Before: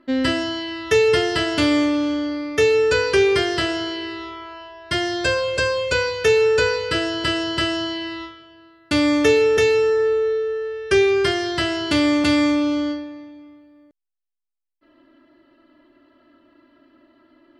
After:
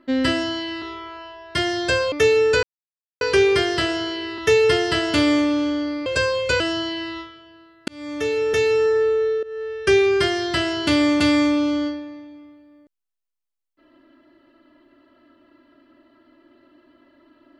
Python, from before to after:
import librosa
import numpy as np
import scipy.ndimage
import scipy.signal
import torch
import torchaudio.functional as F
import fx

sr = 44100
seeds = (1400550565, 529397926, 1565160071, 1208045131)

y = fx.edit(x, sr, fx.swap(start_s=0.82, length_s=1.68, other_s=4.18, other_length_s=1.3),
    fx.insert_silence(at_s=3.01, length_s=0.58),
    fx.cut(start_s=6.02, length_s=1.62),
    fx.fade_in_span(start_s=8.92, length_s=0.97),
    fx.fade_in_from(start_s=10.47, length_s=0.34, curve='qsin', floor_db=-18.5), tone=tone)